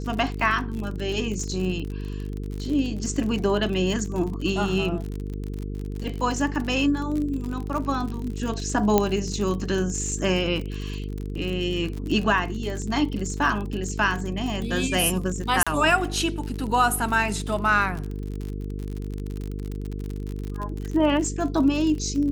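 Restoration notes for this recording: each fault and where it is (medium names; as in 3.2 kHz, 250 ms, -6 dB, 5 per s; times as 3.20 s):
buzz 50 Hz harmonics 9 -31 dBFS
crackle 49 per s -29 dBFS
8.98 s: pop -5 dBFS
15.63–15.67 s: dropout 36 ms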